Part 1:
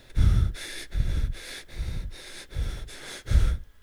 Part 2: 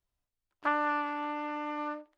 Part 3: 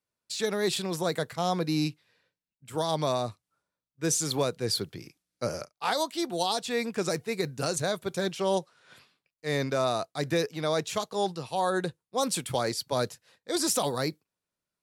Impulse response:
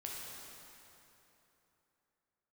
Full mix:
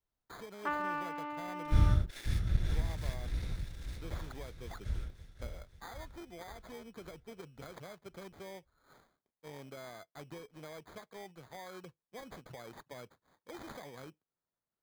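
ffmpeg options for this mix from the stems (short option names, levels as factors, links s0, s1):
-filter_complex "[0:a]aeval=exprs='sgn(val(0))*max(abs(val(0))-0.01,0)':c=same,adelay=1550,volume=0.596,afade=t=out:st=3.83:d=0.48:silence=0.266073,asplit=2[s0][s1];[s1]volume=0.422[s2];[1:a]volume=0.501[s3];[2:a]adynamicequalizer=threshold=0.00501:dfrequency=5500:dqfactor=1.4:tfrequency=5500:tqfactor=1.4:attack=5:release=100:ratio=0.375:range=2:mode=cutabove:tftype=bell,acompressor=threshold=0.00891:ratio=3,acrusher=samples=16:mix=1:aa=0.000001,volume=0.398[s4];[s2]aecho=0:1:538|1076|1614|2152|2690|3228|3766:1|0.51|0.26|0.133|0.0677|0.0345|0.0176[s5];[s0][s3][s4][s5]amix=inputs=4:normalize=0,equalizer=f=10000:w=0.78:g=-3.5"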